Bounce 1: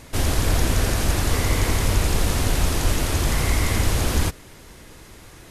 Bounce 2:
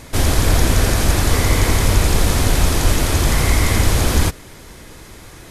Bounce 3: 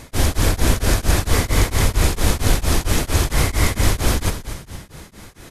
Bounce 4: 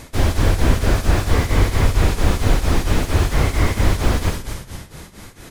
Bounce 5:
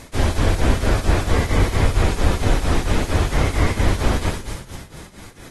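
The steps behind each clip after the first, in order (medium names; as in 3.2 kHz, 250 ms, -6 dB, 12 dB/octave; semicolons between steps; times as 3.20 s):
band-stop 2.8 kHz, Q 26; trim +5.5 dB
on a send: frequency-shifting echo 236 ms, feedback 46%, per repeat -54 Hz, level -11 dB; on the sum: tremolo of two beating tones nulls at 4.4 Hz
flutter echo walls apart 10.8 m, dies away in 0.32 s; slew-rate limiter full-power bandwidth 140 Hz; trim +1 dB
trim -2 dB; AAC 32 kbps 48 kHz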